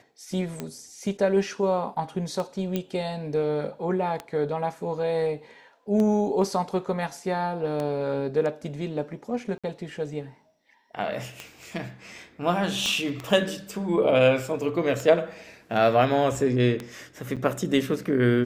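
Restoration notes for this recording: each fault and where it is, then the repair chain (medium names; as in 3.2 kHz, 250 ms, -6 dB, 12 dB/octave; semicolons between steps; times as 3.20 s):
tick 33 1/3 rpm -17 dBFS
2.76 s: pop -14 dBFS
9.58–9.64 s: dropout 56 ms
12.86 s: pop -14 dBFS
17.36–17.37 s: dropout 7.1 ms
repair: de-click; interpolate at 9.58 s, 56 ms; interpolate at 17.36 s, 7.1 ms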